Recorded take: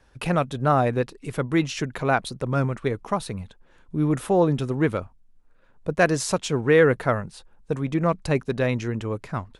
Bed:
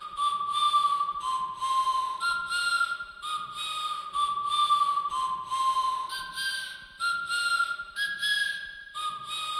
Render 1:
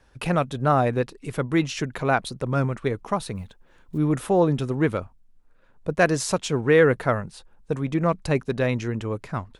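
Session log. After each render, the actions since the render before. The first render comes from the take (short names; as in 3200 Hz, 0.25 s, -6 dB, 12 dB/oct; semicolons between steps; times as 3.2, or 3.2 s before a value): 3.35–3.98 block floating point 7-bit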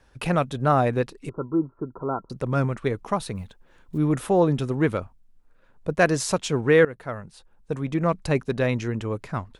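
1.29–2.3 rippled Chebyshev low-pass 1400 Hz, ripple 9 dB; 6.85–8.5 fade in equal-power, from -18.5 dB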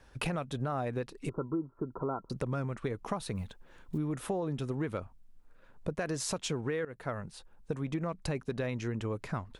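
limiter -13.5 dBFS, peak gain reduction 8.5 dB; compressor, threshold -31 dBFS, peak gain reduction 13 dB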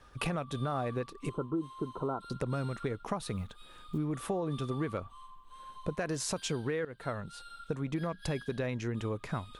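add bed -23.5 dB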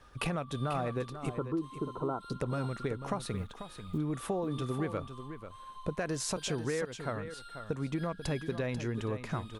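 echo 0.49 s -10.5 dB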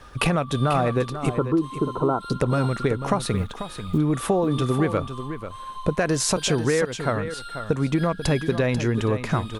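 gain +12 dB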